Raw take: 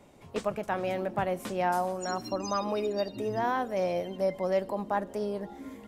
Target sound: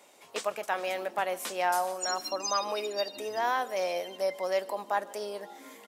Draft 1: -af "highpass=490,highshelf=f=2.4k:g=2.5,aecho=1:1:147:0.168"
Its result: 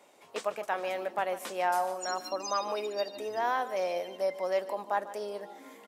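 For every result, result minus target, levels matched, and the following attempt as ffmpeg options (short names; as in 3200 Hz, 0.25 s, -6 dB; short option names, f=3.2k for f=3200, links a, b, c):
echo-to-direct +8 dB; 4000 Hz band -4.0 dB
-af "highpass=490,highshelf=f=2.4k:g=2.5,aecho=1:1:147:0.0668"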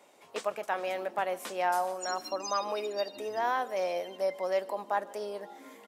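4000 Hz band -4.0 dB
-af "highpass=490,highshelf=f=2.4k:g=9.5,aecho=1:1:147:0.0668"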